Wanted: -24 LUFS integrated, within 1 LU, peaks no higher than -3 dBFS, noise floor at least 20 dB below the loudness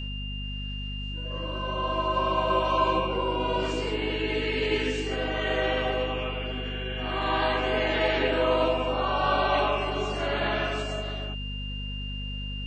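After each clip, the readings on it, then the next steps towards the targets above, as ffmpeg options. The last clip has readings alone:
hum 50 Hz; highest harmonic 250 Hz; hum level -32 dBFS; steady tone 2.8 kHz; tone level -37 dBFS; loudness -27.5 LUFS; peak level -11.5 dBFS; loudness target -24.0 LUFS
-> -af "bandreject=f=50:t=h:w=6,bandreject=f=100:t=h:w=6,bandreject=f=150:t=h:w=6,bandreject=f=200:t=h:w=6,bandreject=f=250:t=h:w=6"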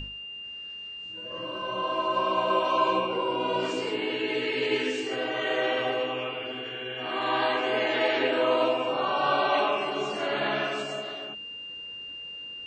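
hum not found; steady tone 2.8 kHz; tone level -37 dBFS
-> -af "bandreject=f=2800:w=30"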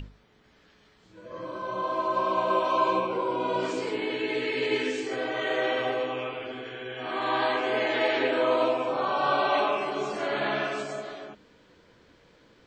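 steady tone not found; loudness -27.5 LUFS; peak level -13.0 dBFS; loudness target -24.0 LUFS
-> -af "volume=1.5"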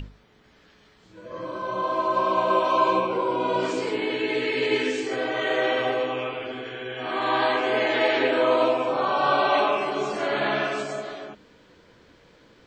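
loudness -24.0 LUFS; peak level -9.5 dBFS; noise floor -57 dBFS

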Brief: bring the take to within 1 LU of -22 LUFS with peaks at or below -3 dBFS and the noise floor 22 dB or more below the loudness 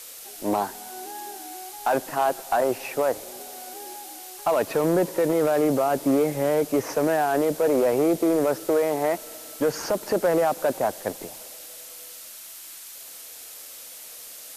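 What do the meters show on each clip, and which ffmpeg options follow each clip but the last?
noise floor -42 dBFS; noise floor target -46 dBFS; loudness -24.0 LUFS; peak level -13.5 dBFS; loudness target -22.0 LUFS
-> -af "afftdn=nr=6:nf=-42"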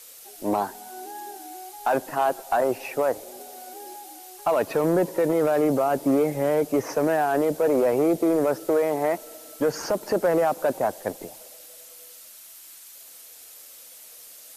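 noise floor -46 dBFS; loudness -24.0 LUFS; peak level -14.0 dBFS; loudness target -22.0 LUFS
-> -af "volume=1.26"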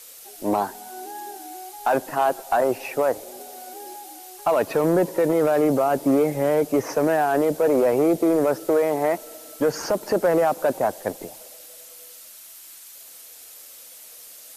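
loudness -22.0 LUFS; peak level -12.0 dBFS; noise floor -44 dBFS

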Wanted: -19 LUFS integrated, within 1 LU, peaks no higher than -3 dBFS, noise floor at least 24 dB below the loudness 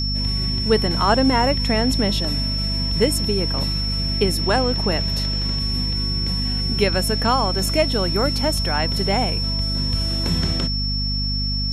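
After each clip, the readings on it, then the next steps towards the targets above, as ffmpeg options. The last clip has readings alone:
hum 50 Hz; highest harmonic 250 Hz; hum level -22 dBFS; steady tone 5.4 kHz; tone level -24 dBFS; loudness -20.0 LUFS; peak level -4.5 dBFS; loudness target -19.0 LUFS
-> -af "bandreject=f=50:t=h:w=4,bandreject=f=100:t=h:w=4,bandreject=f=150:t=h:w=4,bandreject=f=200:t=h:w=4,bandreject=f=250:t=h:w=4"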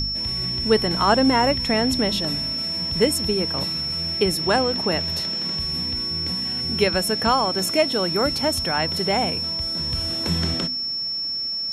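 hum not found; steady tone 5.4 kHz; tone level -24 dBFS
-> -af "bandreject=f=5400:w=30"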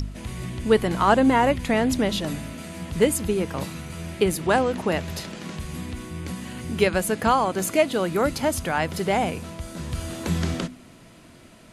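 steady tone not found; loudness -24.0 LUFS; peak level -6.5 dBFS; loudness target -19.0 LUFS
-> -af "volume=1.78,alimiter=limit=0.708:level=0:latency=1"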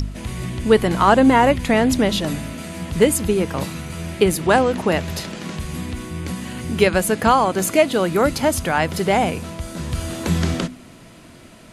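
loudness -19.0 LUFS; peak level -3.0 dBFS; noise floor -44 dBFS

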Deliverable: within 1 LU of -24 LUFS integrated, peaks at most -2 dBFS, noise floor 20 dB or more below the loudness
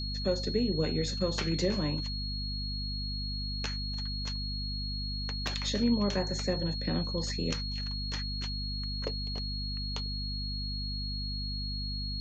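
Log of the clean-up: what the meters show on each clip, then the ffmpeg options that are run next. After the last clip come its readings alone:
hum 50 Hz; highest harmonic 250 Hz; hum level -34 dBFS; steady tone 4.3 kHz; tone level -37 dBFS; loudness -33.0 LUFS; peak level -16.5 dBFS; loudness target -24.0 LUFS
-> -af "bandreject=f=50:t=h:w=6,bandreject=f=100:t=h:w=6,bandreject=f=150:t=h:w=6,bandreject=f=200:t=h:w=6,bandreject=f=250:t=h:w=6"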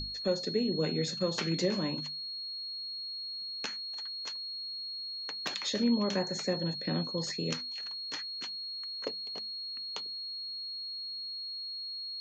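hum not found; steady tone 4.3 kHz; tone level -37 dBFS
-> -af "bandreject=f=4300:w=30"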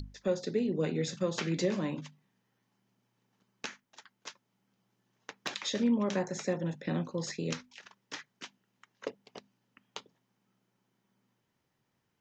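steady tone not found; loudness -34.0 LUFS; peak level -19.0 dBFS; loudness target -24.0 LUFS
-> -af "volume=3.16"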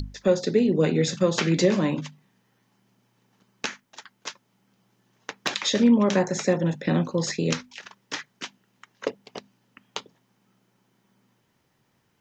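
loudness -24.0 LUFS; peak level -9.0 dBFS; noise floor -70 dBFS

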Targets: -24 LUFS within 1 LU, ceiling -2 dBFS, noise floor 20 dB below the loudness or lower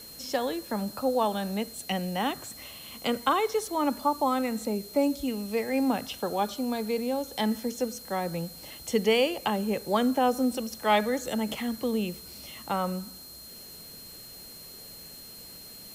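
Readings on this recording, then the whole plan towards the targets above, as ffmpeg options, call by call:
steady tone 4.2 kHz; tone level -47 dBFS; noise floor -46 dBFS; noise floor target -49 dBFS; loudness -28.5 LUFS; peak level -12.0 dBFS; loudness target -24.0 LUFS
-> -af "bandreject=f=4200:w=30"
-af "afftdn=nr=6:nf=-46"
-af "volume=1.68"

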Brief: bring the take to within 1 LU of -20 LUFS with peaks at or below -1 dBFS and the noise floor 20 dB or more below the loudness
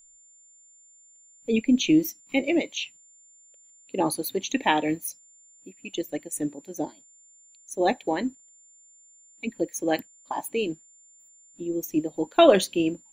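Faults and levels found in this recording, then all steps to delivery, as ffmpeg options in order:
steady tone 7.2 kHz; tone level -53 dBFS; loudness -26.0 LUFS; peak level -4.5 dBFS; loudness target -20.0 LUFS
-> -af "bandreject=f=7200:w=30"
-af "volume=2,alimiter=limit=0.891:level=0:latency=1"

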